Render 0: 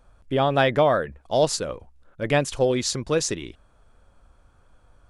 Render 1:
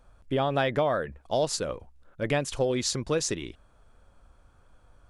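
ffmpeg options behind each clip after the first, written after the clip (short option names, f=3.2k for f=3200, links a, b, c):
-af "acompressor=threshold=-22dB:ratio=2.5,volume=-1.5dB"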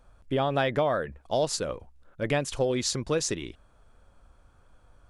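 -af anull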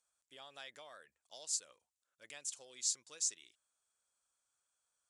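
-af "bandpass=f=7.6k:t=q:w=2.4:csg=0,volume=-1dB"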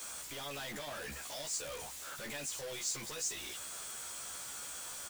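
-filter_complex "[0:a]aeval=exprs='val(0)+0.5*0.0224*sgn(val(0))':c=same,asplit=2[a][b];[b]adelay=14,volume=-3dB[c];[a][c]amix=inputs=2:normalize=0,volume=-6.5dB"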